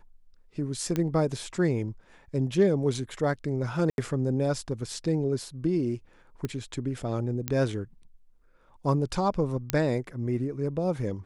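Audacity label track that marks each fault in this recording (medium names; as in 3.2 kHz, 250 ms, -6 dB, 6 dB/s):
0.960000	0.960000	pop -15 dBFS
3.900000	3.980000	dropout 81 ms
6.450000	6.450000	pop -18 dBFS
7.480000	7.480000	pop -12 dBFS
9.700000	9.700000	pop -9 dBFS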